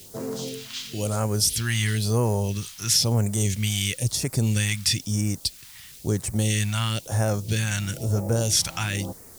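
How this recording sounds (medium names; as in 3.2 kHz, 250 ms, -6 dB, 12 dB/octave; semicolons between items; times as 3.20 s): a quantiser's noise floor 8-bit, dither triangular; phasing stages 2, 1 Hz, lowest notch 440–3100 Hz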